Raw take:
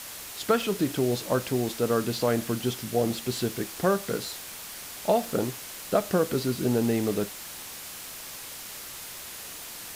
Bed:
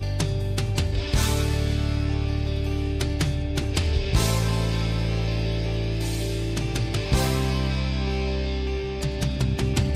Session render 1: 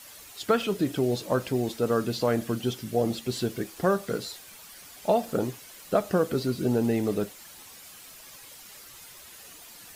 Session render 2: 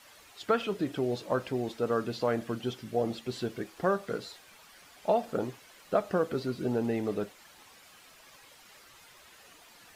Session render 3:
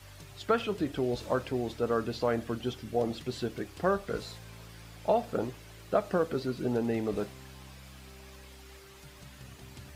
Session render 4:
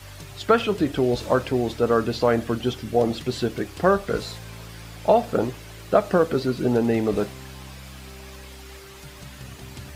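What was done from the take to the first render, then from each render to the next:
noise reduction 10 dB, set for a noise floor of -41 dBFS
low-pass 2.1 kHz 6 dB/octave; bass shelf 440 Hz -7.5 dB
add bed -26 dB
trim +9 dB

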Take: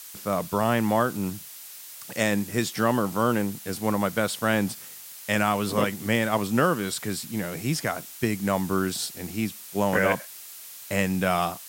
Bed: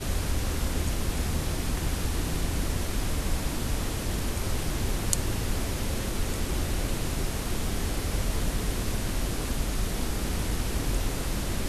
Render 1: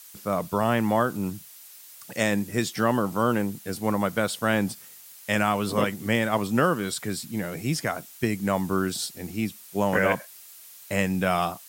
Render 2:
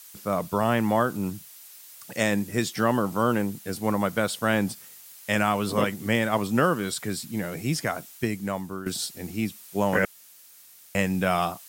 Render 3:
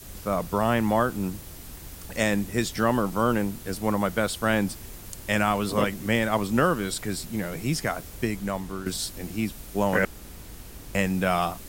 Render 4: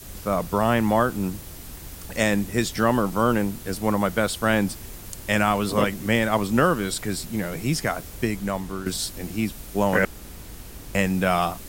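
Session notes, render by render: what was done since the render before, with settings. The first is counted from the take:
noise reduction 6 dB, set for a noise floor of -43 dBFS
8.09–8.86 s: fade out, to -13 dB; 10.05–10.95 s: room tone
add bed -14.5 dB
trim +2.5 dB

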